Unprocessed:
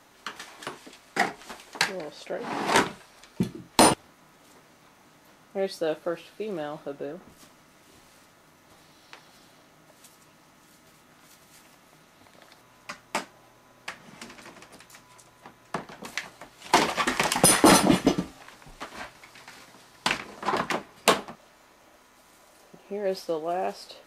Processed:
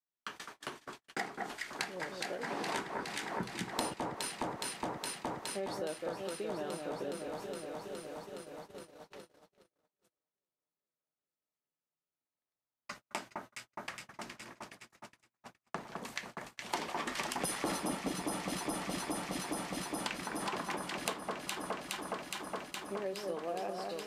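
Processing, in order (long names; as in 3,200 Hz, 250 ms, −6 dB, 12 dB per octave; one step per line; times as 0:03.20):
delay that swaps between a low-pass and a high-pass 208 ms, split 1,700 Hz, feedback 88%, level −5.5 dB
downward compressor 5 to 1, threshold −29 dBFS, peak gain reduction 15.5 dB
noise gate −42 dBFS, range −43 dB
level −5.5 dB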